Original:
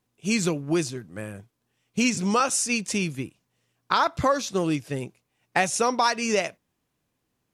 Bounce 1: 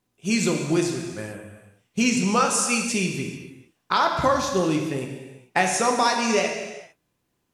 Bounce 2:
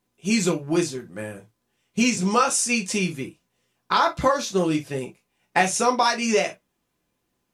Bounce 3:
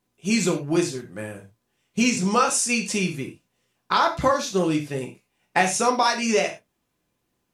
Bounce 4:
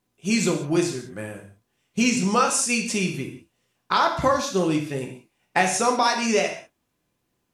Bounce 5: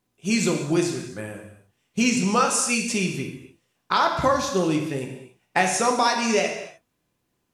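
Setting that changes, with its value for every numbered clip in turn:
reverb whose tail is shaped and stops, gate: 470, 80, 130, 210, 320 milliseconds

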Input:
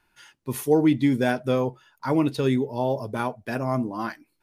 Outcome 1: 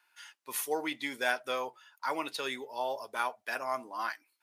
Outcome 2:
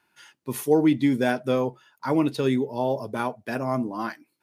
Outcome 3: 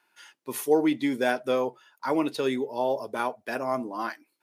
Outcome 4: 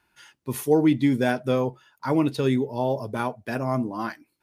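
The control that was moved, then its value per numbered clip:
high-pass filter, corner frequency: 980, 140, 360, 47 Hertz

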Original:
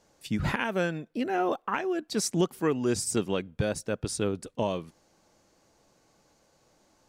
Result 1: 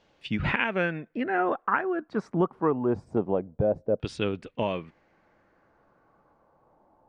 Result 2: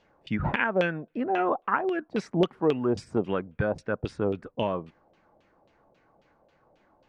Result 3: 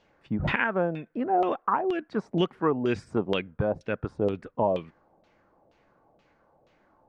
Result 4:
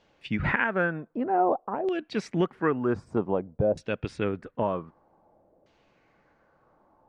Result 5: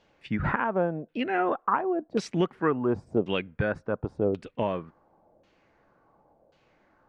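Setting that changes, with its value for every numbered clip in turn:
auto-filter low-pass, speed: 0.25, 3.7, 2.1, 0.53, 0.92 Hertz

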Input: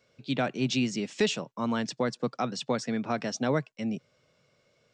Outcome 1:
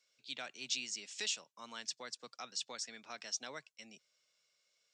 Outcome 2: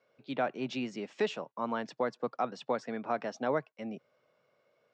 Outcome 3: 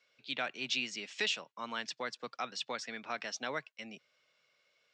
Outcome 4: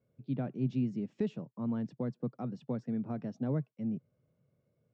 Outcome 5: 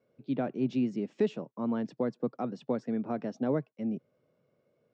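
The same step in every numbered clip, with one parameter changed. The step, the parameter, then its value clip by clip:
resonant band-pass, frequency: 7,600, 820, 2,700, 120, 310 Hertz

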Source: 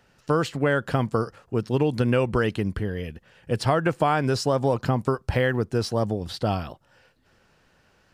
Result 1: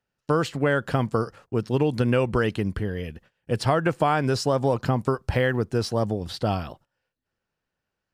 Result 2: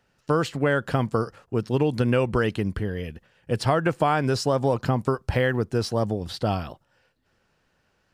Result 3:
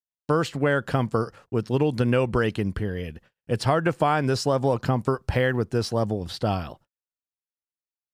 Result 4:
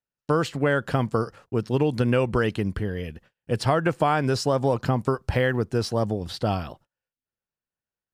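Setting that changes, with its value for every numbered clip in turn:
noise gate, range: −22, −7, −52, −35 decibels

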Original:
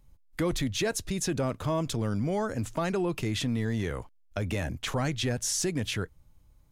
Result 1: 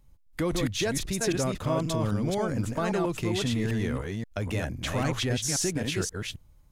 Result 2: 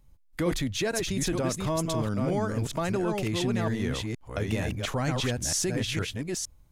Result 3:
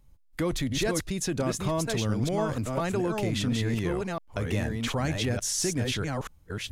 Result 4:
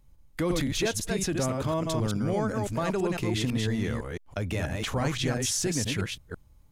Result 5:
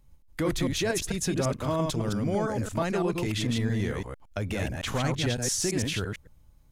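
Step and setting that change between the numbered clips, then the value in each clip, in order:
delay that plays each chunk backwards, delay time: 265, 461, 697, 167, 112 milliseconds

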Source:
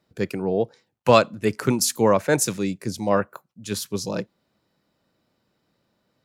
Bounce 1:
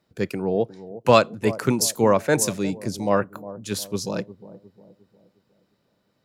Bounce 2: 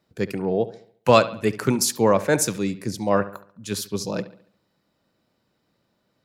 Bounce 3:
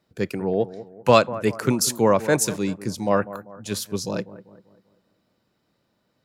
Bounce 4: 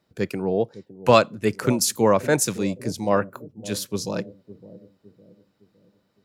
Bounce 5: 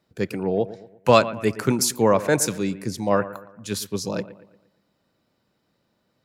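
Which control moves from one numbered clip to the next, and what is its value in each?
bucket-brigade delay, delay time: 356, 70, 195, 559, 116 milliseconds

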